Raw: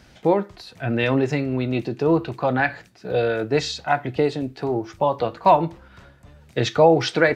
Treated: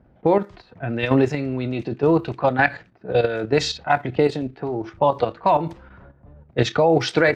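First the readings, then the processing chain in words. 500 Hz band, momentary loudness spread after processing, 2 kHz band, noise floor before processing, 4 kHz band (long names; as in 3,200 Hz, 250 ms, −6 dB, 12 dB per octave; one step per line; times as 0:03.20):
+0.5 dB, 10 LU, +1.0 dB, −52 dBFS, +0.5 dB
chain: low-pass that shuts in the quiet parts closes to 750 Hz, open at −16.5 dBFS
output level in coarse steps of 10 dB
level +5 dB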